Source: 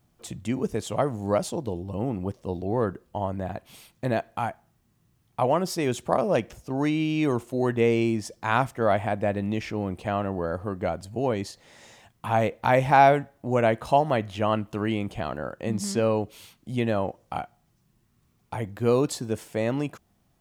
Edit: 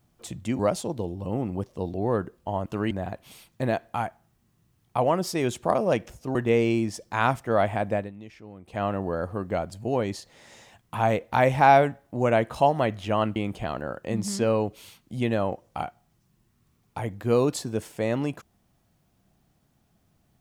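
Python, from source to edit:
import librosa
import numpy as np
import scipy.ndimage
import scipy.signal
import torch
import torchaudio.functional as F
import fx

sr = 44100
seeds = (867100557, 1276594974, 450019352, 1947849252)

y = fx.edit(x, sr, fx.cut(start_s=0.59, length_s=0.68),
    fx.cut(start_s=6.78, length_s=0.88),
    fx.fade_down_up(start_s=9.24, length_s=0.9, db=-15.5, fade_s=0.19),
    fx.move(start_s=14.67, length_s=0.25, to_s=3.34), tone=tone)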